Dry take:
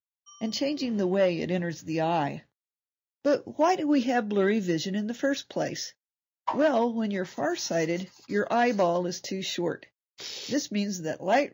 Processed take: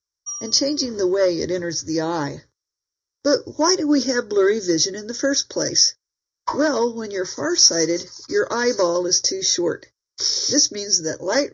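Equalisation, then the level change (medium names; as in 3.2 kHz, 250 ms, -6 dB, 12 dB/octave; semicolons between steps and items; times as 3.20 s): resonant low-pass 5.6 kHz, resonance Q 9.8; bass shelf 190 Hz +8 dB; static phaser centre 730 Hz, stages 6; +7.5 dB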